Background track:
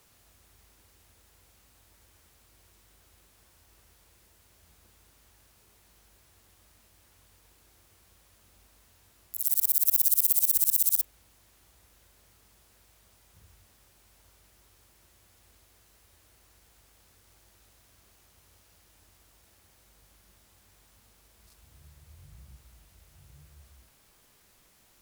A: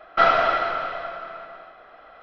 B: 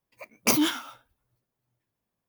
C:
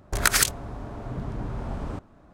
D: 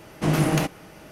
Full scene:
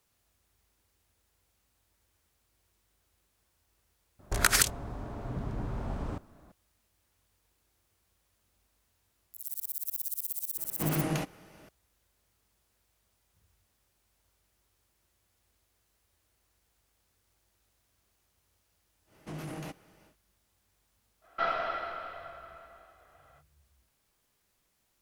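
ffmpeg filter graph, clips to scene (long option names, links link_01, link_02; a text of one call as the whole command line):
ffmpeg -i bed.wav -i cue0.wav -i cue1.wav -i cue2.wav -i cue3.wav -filter_complex "[4:a]asplit=2[link_01][link_02];[0:a]volume=-12.5dB[link_03];[link_02]alimiter=limit=-16.5dB:level=0:latency=1:release=17[link_04];[3:a]atrim=end=2.33,asetpts=PTS-STARTPTS,volume=-3.5dB,afade=type=in:duration=0.004:curve=hsin,afade=type=out:start_time=2.326:duration=0.004:curve=hsin,adelay=4190[link_05];[link_01]atrim=end=1.11,asetpts=PTS-STARTPTS,volume=-9.5dB,afade=type=in:duration=0.004:curve=hsin,afade=type=out:start_time=1.106:duration=0.004:curve=hsin,adelay=466578S[link_06];[link_04]atrim=end=1.11,asetpts=PTS-STARTPTS,volume=-16dB,afade=type=in:duration=0.1,afade=type=out:start_time=1.01:duration=0.1,adelay=19050[link_07];[1:a]atrim=end=2.22,asetpts=PTS-STARTPTS,volume=-13.5dB,afade=type=in:duration=0.05,afade=type=out:start_time=2.17:duration=0.05,adelay=21210[link_08];[link_03][link_05][link_06][link_07][link_08]amix=inputs=5:normalize=0" out.wav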